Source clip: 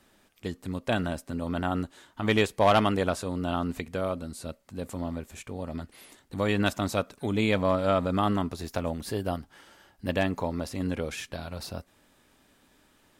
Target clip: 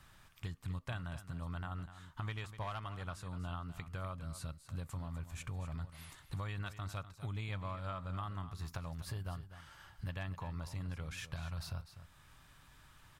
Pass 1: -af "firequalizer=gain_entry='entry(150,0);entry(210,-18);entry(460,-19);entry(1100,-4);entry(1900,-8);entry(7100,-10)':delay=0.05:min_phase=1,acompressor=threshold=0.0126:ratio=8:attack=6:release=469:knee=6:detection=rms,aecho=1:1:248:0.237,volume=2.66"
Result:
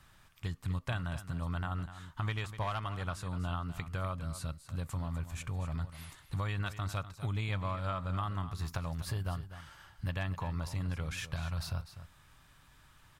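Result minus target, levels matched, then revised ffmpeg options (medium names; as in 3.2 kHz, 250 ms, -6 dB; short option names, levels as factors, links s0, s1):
compression: peak gain reduction -6 dB
-af "firequalizer=gain_entry='entry(150,0);entry(210,-18);entry(460,-19);entry(1100,-4);entry(1900,-8);entry(7100,-10)':delay=0.05:min_phase=1,acompressor=threshold=0.00562:ratio=8:attack=6:release=469:knee=6:detection=rms,aecho=1:1:248:0.237,volume=2.66"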